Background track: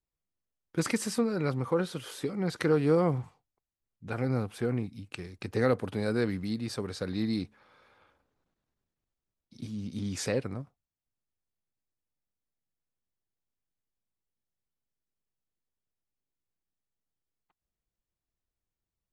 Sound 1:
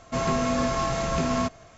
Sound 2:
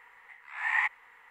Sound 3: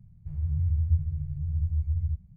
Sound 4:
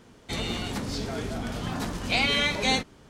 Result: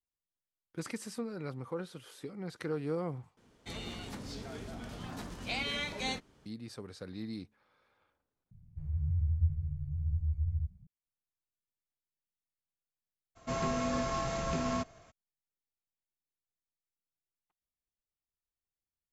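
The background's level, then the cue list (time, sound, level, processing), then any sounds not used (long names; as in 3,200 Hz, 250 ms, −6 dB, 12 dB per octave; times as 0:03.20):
background track −10.5 dB
0:03.37: overwrite with 4 −11.5 dB
0:08.51: overwrite with 3 −5 dB
0:13.35: mix in 1 −8 dB, fades 0.02 s
not used: 2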